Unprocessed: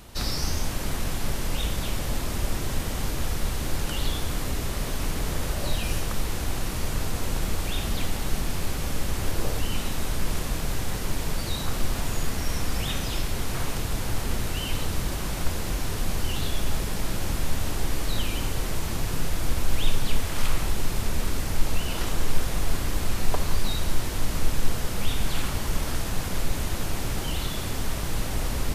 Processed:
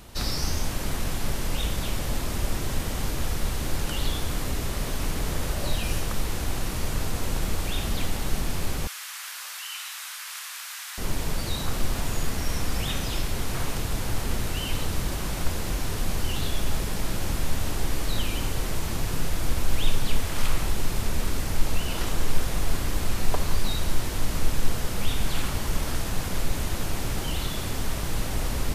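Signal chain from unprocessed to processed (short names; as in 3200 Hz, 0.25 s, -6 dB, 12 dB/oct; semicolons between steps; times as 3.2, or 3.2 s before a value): 8.87–10.98 HPF 1200 Hz 24 dB/oct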